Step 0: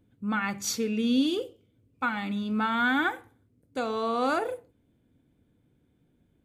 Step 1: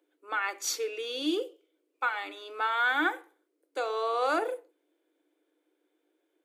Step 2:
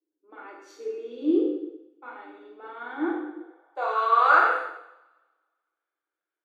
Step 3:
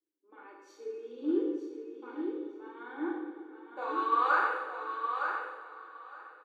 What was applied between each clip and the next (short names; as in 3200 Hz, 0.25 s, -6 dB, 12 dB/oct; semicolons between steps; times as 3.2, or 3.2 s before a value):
Chebyshev high-pass 300 Hz, order 8
two-slope reverb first 0.98 s, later 2.6 s, from -23 dB, DRR -4.5 dB; band-pass sweep 260 Hz -> 1400 Hz, 3.33–4.01; three-band expander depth 40%; gain +7 dB
notch comb 680 Hz; on a send: feedback echo 0.913 s, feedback 15%, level -6.5 dB; on the sum: plate-style reverb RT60 4.5 s, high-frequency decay 0.9×, DRR 11 dB; gain -7 dB